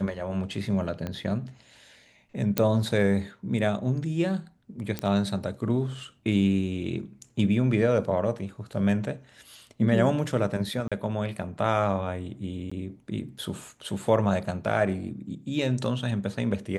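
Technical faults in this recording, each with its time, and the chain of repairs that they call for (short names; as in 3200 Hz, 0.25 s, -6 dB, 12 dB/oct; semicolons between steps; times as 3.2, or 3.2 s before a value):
1.07 pop -19 dBFS
2.58 pop -7 dBFS
4.99 pop -14 dBFS
10.88–10.92 gap 36 ms
12.7–12.71 gap 15 ms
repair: de-click; interpolate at 10.88, 36 ms; interpolate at 12.7, 15 ms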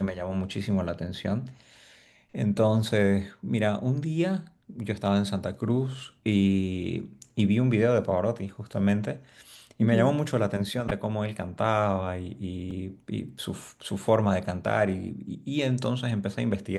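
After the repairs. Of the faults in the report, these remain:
1.07 pop
4.99 pop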